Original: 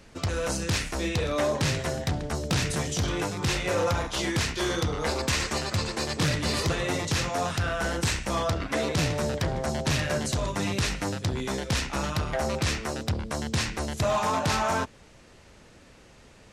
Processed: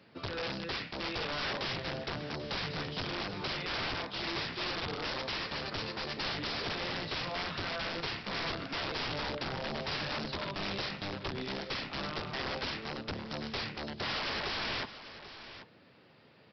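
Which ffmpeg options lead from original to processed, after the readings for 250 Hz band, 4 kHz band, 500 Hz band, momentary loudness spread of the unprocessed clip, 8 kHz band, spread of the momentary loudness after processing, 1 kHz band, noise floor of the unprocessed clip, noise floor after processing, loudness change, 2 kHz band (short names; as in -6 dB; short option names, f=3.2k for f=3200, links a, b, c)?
-10.0 dB, -3.5 dB, -10.5 dB, 4 LU, -23.5 dB, 4 LU, -8.0 dB, -53 dBFS, -60 dBFS, -8.0 dB, -5.5 dB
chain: -af "highpass=f=110:w=0.5412,highpass=f=110:w=1.3066,aresample=11025,aeval=exprs='(mod(15.8*val(0)+1,2)-1)/15.8':c=same,aresample=44100,aecho=1:1:789:0.211,volume=-6.5dB"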